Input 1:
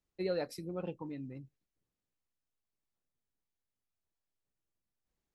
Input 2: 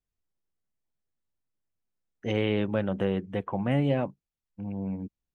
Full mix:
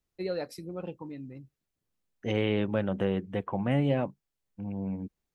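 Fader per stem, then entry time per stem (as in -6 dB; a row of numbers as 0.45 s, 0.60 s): +1.5 dB, -1.0 dB; 0.00 s, 0.00 s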